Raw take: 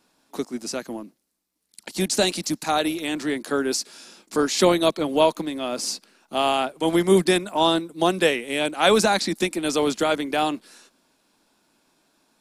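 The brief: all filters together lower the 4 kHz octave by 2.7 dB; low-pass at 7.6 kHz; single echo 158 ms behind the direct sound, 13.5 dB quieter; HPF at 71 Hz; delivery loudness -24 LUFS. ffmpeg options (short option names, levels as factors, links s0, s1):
-af "highpass=71,lowpass=7600,equalizer=f=4000:t=o:g=-3,aecho=1:1:158:0.211,volume=0.891"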